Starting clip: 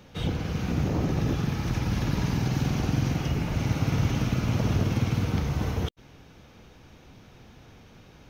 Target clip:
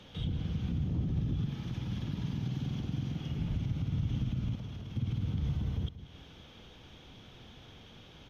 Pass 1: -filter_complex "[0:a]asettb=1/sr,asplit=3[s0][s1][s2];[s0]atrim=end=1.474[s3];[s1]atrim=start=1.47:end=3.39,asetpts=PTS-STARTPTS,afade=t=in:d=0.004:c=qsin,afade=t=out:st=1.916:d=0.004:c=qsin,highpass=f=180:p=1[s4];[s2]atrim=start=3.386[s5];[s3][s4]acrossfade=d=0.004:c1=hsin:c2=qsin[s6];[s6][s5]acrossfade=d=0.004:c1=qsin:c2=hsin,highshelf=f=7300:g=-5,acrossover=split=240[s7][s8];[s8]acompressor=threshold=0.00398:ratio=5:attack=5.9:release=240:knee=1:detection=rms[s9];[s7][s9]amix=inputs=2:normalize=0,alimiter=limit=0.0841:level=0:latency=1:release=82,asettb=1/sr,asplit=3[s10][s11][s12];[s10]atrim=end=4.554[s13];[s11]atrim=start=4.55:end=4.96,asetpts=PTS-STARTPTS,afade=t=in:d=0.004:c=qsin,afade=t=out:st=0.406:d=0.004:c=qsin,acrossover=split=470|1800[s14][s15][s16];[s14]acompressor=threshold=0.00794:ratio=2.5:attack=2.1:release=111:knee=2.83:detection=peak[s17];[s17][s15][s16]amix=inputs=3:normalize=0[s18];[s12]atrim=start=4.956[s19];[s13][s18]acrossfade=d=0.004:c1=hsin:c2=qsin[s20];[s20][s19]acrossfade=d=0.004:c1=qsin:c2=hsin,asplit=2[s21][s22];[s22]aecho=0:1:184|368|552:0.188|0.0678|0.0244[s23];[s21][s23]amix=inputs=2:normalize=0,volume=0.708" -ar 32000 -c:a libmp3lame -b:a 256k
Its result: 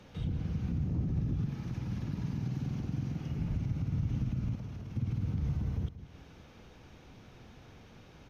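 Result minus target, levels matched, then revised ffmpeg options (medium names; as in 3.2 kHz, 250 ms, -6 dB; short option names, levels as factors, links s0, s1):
4 kHz band -9.0 dB
-filter_complex "[0:a]asettb=1/sr,asplit=3[s0][s1][s2];[s0]atrim=end=1.474[s3];[s1]atrim=start=1.47:end=3.39,asetpts=PTS-STARTPTS,afade=t=in:d=0.004:c=qsin,afade=t=out:st=1.916:d=0.004:c=qsin,highpass=f=180:p=1[s4];[s2]atrim=start=3.386[s5];[s3][s4]acrossfade=d=0.004:c1=hsin:c2=qsin[s6];[s6][s5]acrossfade=d=0.004:c1=qsin:c2=hsin,highshelf=f=7300:g=-5,acrossover=split=240[s7][s8];[s8]acompressor=threshold=0.00398:ratio=5:attack=5.9:release=240:knee=1:detection=rms,equalizer=f=3300:t=o:w=0.35:g=14[s9];[s7][s9]amix=inputs=2:normalize=0,alimiter=limit=0.0841:level=0:latency=1:release=82,asettb=1/sr,asplit=3[s10][s11][s12];[s10]atrim=end=4.554[s13];[s11]atrim=start=4.55:end=4.96,asetpts=PTS-STARTPTS,afade=t=in:d=0.004:c=qsin,afade=t=out:st=0.406:d=0.004:c=qsin,acrossover=split=470|1800[s14][s15][s16];[s14]acompressor=threshold=0.00794:ratio=2.5:attack=2.1:release=111:knee=2.83:detection=peak[s17];[s17][s15][s16]amix=inputs=3:normalize=0[s18];[s12]atrim=start=4.956[s19];[s13][s18]acrossfade=d=0.004:c1=hsin:c2=qsin[s20];[s20][s19]acrossfade=d=0.004:c1=qsin:c2=hsin,asplit=2[s21][s22];[s22]aecho=0:1:184|368|552:0.188|0.0678|0.0244[s23];[s21][s23]amix=inputs=2:normalize=0,volume=0.708" -ar 32000 -c:a libmp3lame -b:a 256k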